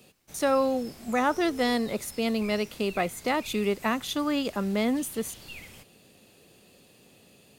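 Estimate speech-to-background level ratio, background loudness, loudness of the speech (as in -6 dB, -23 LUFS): 18.0 dB, -46.0 LUFS, -28.0 LUFS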